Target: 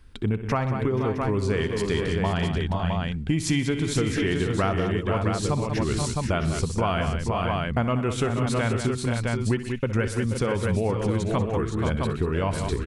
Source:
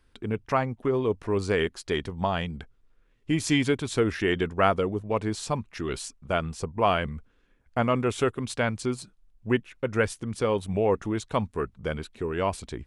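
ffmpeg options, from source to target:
ffmpeg -i in.wav -af "lowshelf=frequency=280:gain=7.5,aecho=1:1:63|124|190|480|514|663:0.2|0.126|0.266|0.335|0.335|0.447,acompressor=threshold=-27dB:ratio=4,equalizer=frequency=450:width_type=o:width=2.2:gain=-3.5,volume=7dB" out.wav

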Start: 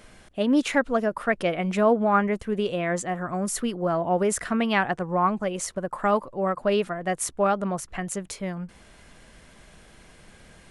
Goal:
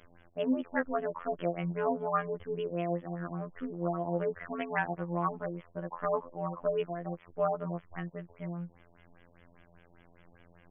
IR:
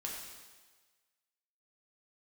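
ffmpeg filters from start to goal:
-af "afftfilt=real='hypot(re,im)*cos(PI*b)':imag='0':win_size=2048:overlap=0.75,afftfilt=real='re*lt(b*sr/1024,940*pow(3500/940,0.5+0.5*sin(2*PI*5*pts/sr)))':imag='im*lt(b*sr/1024,940*pow(3500/940,0.5+0.5*sin(2*PI*5*pts/sr)))':win_size=1024:overlap=0.75,volume=-4.5dB"

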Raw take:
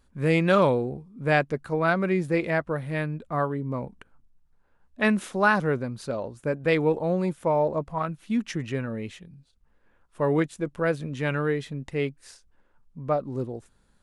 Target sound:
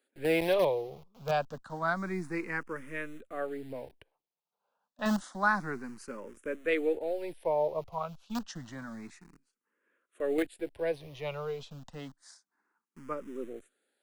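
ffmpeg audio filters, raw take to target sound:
ffmpeg -i in.wav -filter_complex "[0:a]equalizer=frequency=130:width_type=o:width=0.54:gain=-3.5,acrossover=split=260|560|2300[link_01][link_02][link_03][link_04];[link_01]acrusher=bits=5:dc=4:mix=0:aa=0.000001[link_05];[link_05][link_02][link_03][link_04]amix=inputs=4:normalize=0,asplit=2[link_06][link_07];[link_07]afreqshift=0.29[link_08];[link_06][link_08]amix=inputs=2:normalize=1,volume=-4.5dB" out.wav

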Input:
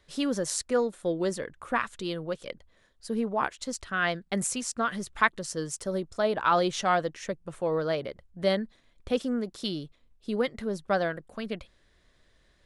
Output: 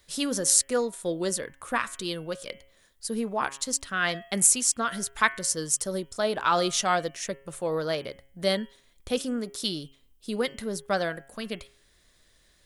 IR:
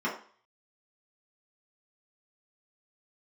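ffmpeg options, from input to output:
-af "aemphasis=mode=production:type=75fm,bandreject=frequency=136.8:width_type=h:width=4,bandreject=frequency=273.6:width_type=h:width=4,bandreject=frequency=410.4:width_type=h:width=4,bandreject=frequency=547.2:width_type=h:width=4,bandreject=frequency=684:width_type=h:width=4,bandreject=frequency=820.8:width_type=h:width=4,bandreject=frequency=957.6:width_type=h:width=4,bandreject=frequency=1094.4:width_type=h:width=4,bandreject=frequency=1231.2:width_type=h:width=4,bandreject=frequency=1368:width_type=h:width=4,bandreject=frequency=1504.8:width_type=h:width=4,bandreject=frequency=1641.6:width_type=h:width=4,bandreject=frequency=1778.4:width_type=h:width=4,bandreject=frequency=1915.2:width_type=h:width=4,bandreject=frequency=2052:width_type=h:width=4,bandreject=frequency=2188.8:width_type=h:width=4,bandreject=frequency=2325.6:width_type=h:width=4,bandreject=frequency=2462.4:width_type=h:width=4,bandreject=frequency=2599.2:width_type=h:width=4,bandreject=frequency=2736:width_type=h:width=4,bandreject=frequency=2872.8:width_type=h:width=4,bandreject=frequency=3009.6:width_type=h:width=4,bandreject=frequency=3146.4:width_type=h:width=4,bandreject=frequency=3283.2:width_type=h:width=4"

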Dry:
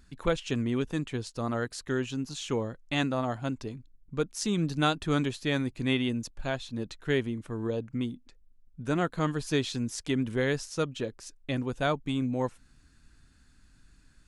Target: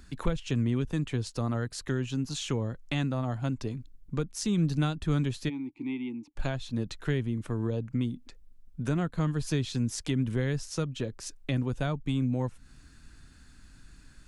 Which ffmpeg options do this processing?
ffmpeg -i in.wav -filter_complex "[0:a]asplit=3[link_01][link_02][link_03];[link_01]afade=type=out:start_time=5.48:duration=0.02[link_04];[link_02]asplit=3[link_05][link_06][link_07];[link_05]bandpass=frequency=300:width_type=q:width=8,volume=0dB[link_08];[link_06]bandpass=frequency=870:width_type=q:width=8,volume=-6dB[link_09];[link_07]bandpass=frequency=2240:width_type=q:width=8,volume=-9dB[link_10];[link_08][link_09][link_10]amix=inputs=3:normalize=0,afade=type=in:start_time=5.48:duration=0.02,afade=type=out:start_time=6.35:duration=0.02[link_11];[link_03]afade=type=in:start_time=6.35:duration=0.02[link_12];[link_04][link_11][link_12]amix=inputs=3:normalize=0,acrossover=split=180[link_13][link_14];[link_14]acompressor=threshold=-40dB:ratio=4[link_15];[link_13][link_15]amix=inputs=2:normalize=0,volume=6.5dB" out.wav

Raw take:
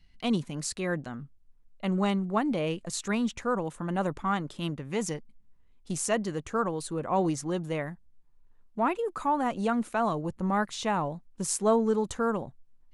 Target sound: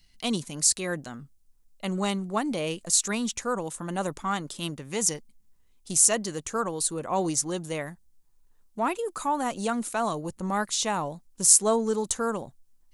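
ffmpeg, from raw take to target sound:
ffmpeg -i in.wav -af "bass=frequency=250:gain=-3,treble=frequency=4000:gain=15" out.wav

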